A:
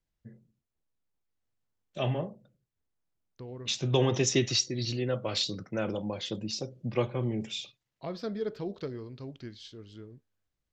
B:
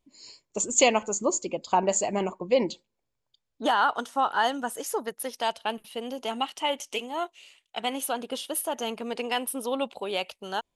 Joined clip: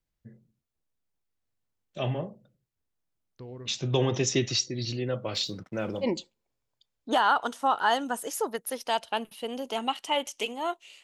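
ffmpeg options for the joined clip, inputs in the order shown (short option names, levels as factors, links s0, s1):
-filter_complex "[0:a]asettb=1/sr,asplit=3[s0][s1][s2];[s0]atrim=end=5.344[s3];[s1]atrim=start=5.34:end=6.07,asetpts=PTS-STARTPTS,afade=t=in:d=0.004:c=qsin,afade=t=out:st=0.726:d=0.004:c=qsin,aeval=exprs='sgn(val(0))*max(abs(val(0))-0.00126,0)':c=same[s4];[s2]atrim=start=6.066[s5];[s3][s4]acrossfade=d=0.004:c1=hsin:c2=qsin[s6];[s6][s5]acrossfade=d=0.004:c1=qsin:c2=hsin,apad=whole_dur=11.03,atrim=end=11.03,atrim=end=6.07,asetpts=PTS-STARTPTS[s7];[1:a]atrim=start=2.54:end=7.56,asetpts=PTS-STARTPTS[s8];[s7][s8]acrossfade=d=0.06:c1=tri:c2=tri"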